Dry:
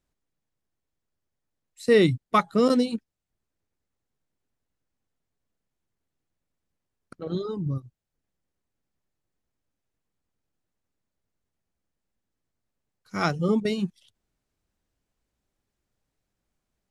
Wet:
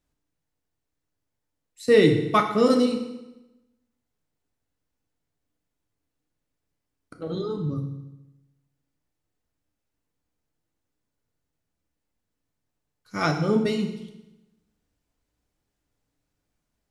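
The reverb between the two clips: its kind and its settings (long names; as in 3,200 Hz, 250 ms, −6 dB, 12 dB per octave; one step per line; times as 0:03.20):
feedback delay network reverb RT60 0.98 s, low-frequency decay 1.1×, high-frequency decay 0.9×, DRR 3 dB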